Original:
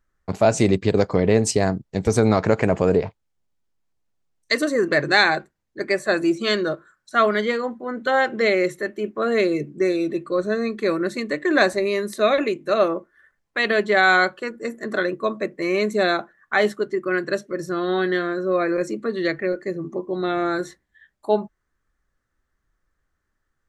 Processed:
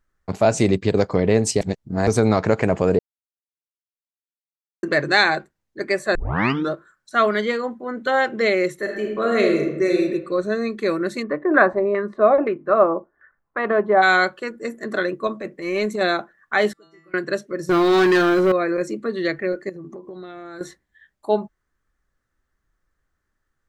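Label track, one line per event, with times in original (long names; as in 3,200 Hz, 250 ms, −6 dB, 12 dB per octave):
1.610000	2.070000	reverse
2.990000	4.830000	silence
6.150000	6.150000	tape start 0.55 s
8.780000	10.010000	thrown reverb, RT60 0.96 s, DRR 1 dB
11.220000	14.010000	auto-filter low-pass saw down 3.3 Hz → 0.7 Hz 750–1,500 Hz
15.270000	16.010000	transient designer attack −10 dB, sustain 0 dB
16.730000	17.140000	stiff-string resonator 160 Hz, decay 0.8 s, inharmonicity 0.002
17.690000	18.520000	leveller curve on the samples passes 3
19.690000	20.610000	downward compressor 16 to 1, threshold −32 dBFS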